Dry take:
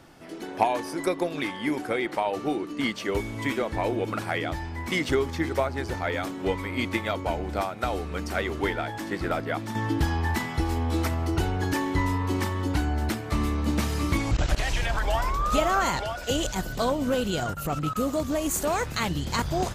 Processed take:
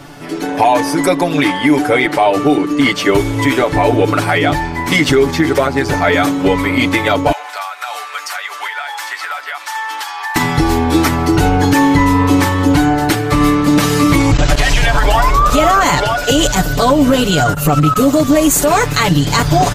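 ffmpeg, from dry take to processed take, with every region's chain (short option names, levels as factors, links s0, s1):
-filter_complex "[0:a]asettb=1/sr,asplit=3[s0][s1][s2];[s0]atrim=end=7.324[s3];[s1]atrim=start=7.32:end=10.36,asetpts=PTS-STARTPTS,afade=t=in:d=0.004:c=qsin,afade=t=out:st=3.036:d=0.004:c=qsin,highpass=f=900:w=0.5412,highpass=f=900:w=1.3066,acompressor=threshold=0.0158:ratio=5:attack=3.2:release=140:knee=1:detection=peak[s4];[s2]atrim=start=10.356[s5];[s3][s4]acrossfade=d=0.004:c1=hsin:c2=qsin[s6];[s6][s5]acrossfade=d=0.004:c1=qsin:c2=hsin,aecho=1:1:6.9:0.89,alimiter=level_in=5.96:limit=0.891:release=50:level=0:latency=1,volume=0.891"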